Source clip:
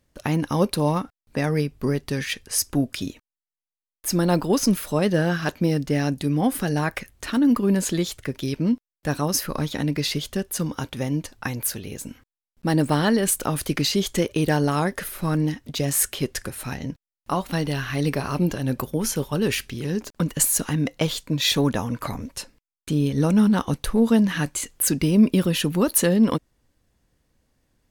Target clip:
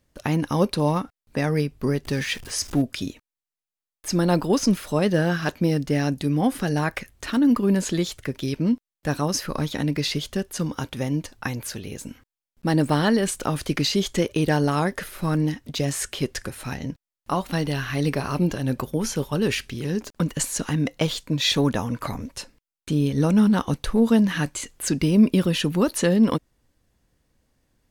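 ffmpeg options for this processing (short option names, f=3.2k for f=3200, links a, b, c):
-filter_complex "[0:a]asettb=1/sr,asplit=3[a][b][c];[a]atrim=end=2.054[d];[b]atrim=start=2.05:end=2.82,asetpts=PTS-STARTPTS,afade=t=in:d=0.004:c=qsin,afade=t=out:st=0.766:d=0.004:c=qsin,aeval=exprs='val(0)+0.5*0.0168*sgn(val(0))':c=same[e];[c]atrim=start=2.816[f];[d][e]acrossfade=d=0.004:c1=hsin:c2=qsin[g];[g][f]acrossfade=d=0.004:c1=qsin:c2=hsin,acrossover=split=7900[h][i];[i]acompressor=threshold=-43dB:ratio=4:attack=1:release=60[j];[h][j]amix=inputs=2:normalize=0"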